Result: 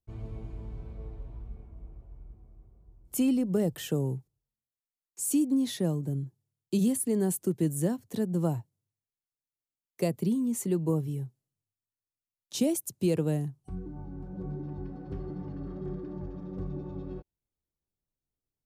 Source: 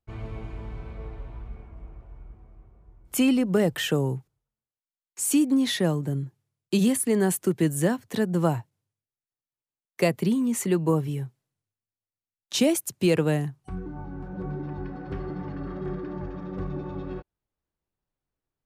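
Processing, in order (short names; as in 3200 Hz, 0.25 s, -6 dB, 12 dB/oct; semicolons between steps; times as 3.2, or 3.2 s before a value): bell 1800 Hz -12.5 dB 2.5 oct; gain -3 dB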